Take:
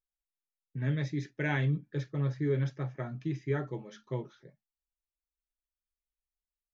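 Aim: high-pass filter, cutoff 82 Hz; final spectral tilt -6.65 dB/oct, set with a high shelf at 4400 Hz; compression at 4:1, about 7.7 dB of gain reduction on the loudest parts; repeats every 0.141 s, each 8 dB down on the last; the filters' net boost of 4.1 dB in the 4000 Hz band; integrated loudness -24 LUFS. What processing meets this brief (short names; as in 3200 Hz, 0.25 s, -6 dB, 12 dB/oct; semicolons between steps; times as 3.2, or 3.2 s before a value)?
HPF 82 Hz; bell 4000 Hz +6.5 dB; high shelf 4400 Hz -3 dB; compressor 4:1, threshold -35 dBFS; feedback echo 0.141 s, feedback 40%, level -8 dB; gain +15.5 dB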